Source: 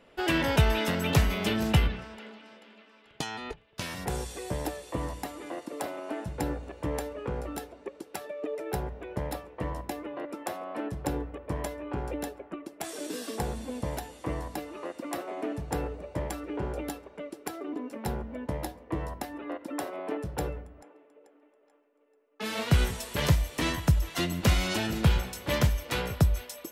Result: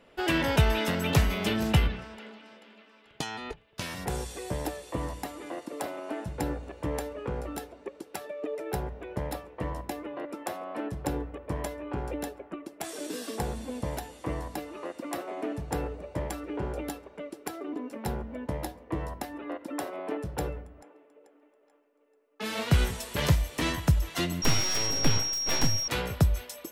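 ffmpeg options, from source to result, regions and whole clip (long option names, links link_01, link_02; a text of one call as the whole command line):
ffmpeg -i in.wav -filter_complex "[0:a]asettb=1/sr,asplit=3[link_01][link_02][link_03];[link_01]atrim=end=24.424[link_04];[link_02]atrim=start=24.42:end=25.88,asetpts=PTS-STARTPTS,afade=type=in:duration=0.004:curve=qsin,afade=type=out:start_time=1.456:duration=0.004:curve=qsin,aeval=exprs='abs(val(0))':channel_layout=same,aeval=exprs='val(0)+0.0398*sin(2*PI*5600*n/s)':channel_layout=same[link_05];[link_03]atrim=start=25.876[link_06];[link_04][link_05]acrossfade=duration=0.004:curve1=hsin:curve2=qsin[link_07];[link_07][link_06]acrossfade=duration=0.004:curve1=qsin:curve2=hsin" out.wav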